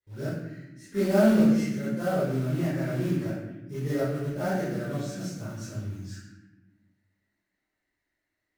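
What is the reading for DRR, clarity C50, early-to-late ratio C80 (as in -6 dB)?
-15.0 dB, -3.0 dB, 1.5 dB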